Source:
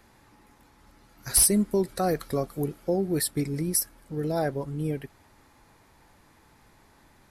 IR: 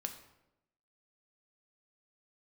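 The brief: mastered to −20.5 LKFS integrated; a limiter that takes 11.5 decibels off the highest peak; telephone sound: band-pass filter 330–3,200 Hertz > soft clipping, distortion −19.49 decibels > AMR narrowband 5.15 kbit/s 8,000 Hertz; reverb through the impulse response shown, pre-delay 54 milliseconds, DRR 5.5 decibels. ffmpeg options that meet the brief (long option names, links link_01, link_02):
-filter_complex "[0:a]alimiter=limit=-22dB:level=0:latency=1,asplit=2[link_01][link_02];[1:a]atrim=start_sample=2205,adelay=54[link_03];[link_02][link_03]afir=irnorm=-1:irlink=0,volume=-4.5dB[link_04];[link_01][link_04]amix=inputs=2:normalize=0,highpass=330,lowpass=3200,asoftclip=threshold=-24dB,volume=16dB" -ar 8000 -c:a libopencore_amrnb -b:a 5150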